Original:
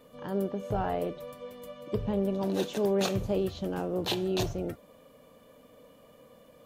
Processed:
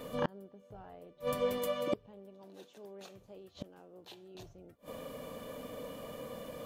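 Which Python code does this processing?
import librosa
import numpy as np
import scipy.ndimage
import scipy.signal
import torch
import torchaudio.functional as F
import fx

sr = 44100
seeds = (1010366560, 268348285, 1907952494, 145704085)

y = fx.low_shelf(x, sr, hz=180.0, db=-11.5, at=(1.58, 4.35))
y = fx.gate_flip(y, sr, shuts_db=-32.0, range_db=-32)
y = y * librosa.db_to_amplitude(11.0)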